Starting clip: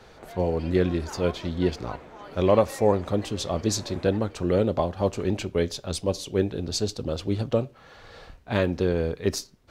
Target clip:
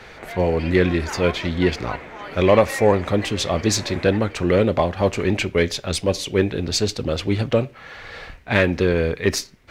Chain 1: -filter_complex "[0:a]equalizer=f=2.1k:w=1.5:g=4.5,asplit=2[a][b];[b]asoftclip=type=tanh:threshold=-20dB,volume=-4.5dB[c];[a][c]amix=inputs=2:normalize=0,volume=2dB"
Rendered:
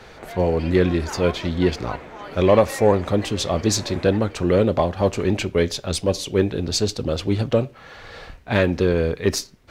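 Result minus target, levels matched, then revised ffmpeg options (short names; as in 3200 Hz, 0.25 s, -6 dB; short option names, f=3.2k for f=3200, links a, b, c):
2000 Hz band -4.0 dB
-filter_complex "[0:a]equalizer=f=2.1k:w=1.5:g=11,asplit=2[a][b];[b]asoftclip=type=tanh:threshold=-20dB,volume=-4.5dB[c];[a][c]amix=inputs=2:normalize=0,volume=2dB"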